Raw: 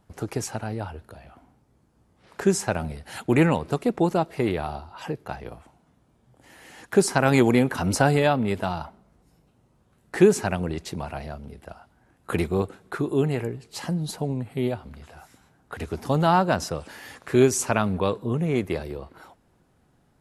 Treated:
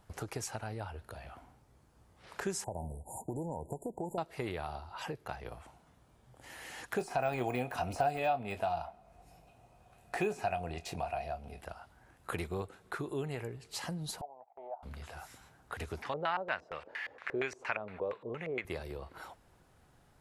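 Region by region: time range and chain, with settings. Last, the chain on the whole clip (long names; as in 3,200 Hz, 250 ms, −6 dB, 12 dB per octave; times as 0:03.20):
0:02.64–0:04.18: downward compressor 5 to 1, threshold −21 dBFS + linear-phase brick-wall band-stop 1,000–6,800 Hz
0:06.98–0:11.61: de-essing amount 80% + double-tracking delay 24 ms −11 dB + hollow resonant body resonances 710/2,500 Hz, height 15 dB, ringing for 35 ms
0:14.21–0:14.83: flat-topped band-pass 760 Hz, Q 2.8 + noise gate −55 dBFS, range −15 dB
0:16.02–0:18.65: spectral tilt +4 dB per octave + auto-filter low-pass square 4.3 Hz 510–2,100 Hz
whole clip: parametric band 230 Hz −8 dB 1.8 octaves; downward compressor 2 to 1, threshold −45 dBFS; level +2 dB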